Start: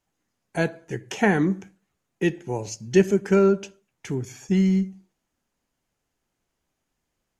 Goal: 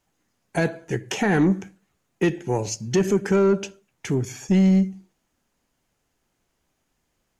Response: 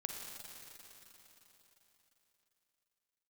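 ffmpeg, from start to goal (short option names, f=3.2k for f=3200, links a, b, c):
-af "alimiter=limit=-13.5dB:level=0:latency=1:release=56,asoftclip=type=tanh:threshold=-16.5dB,volume=5.5dB"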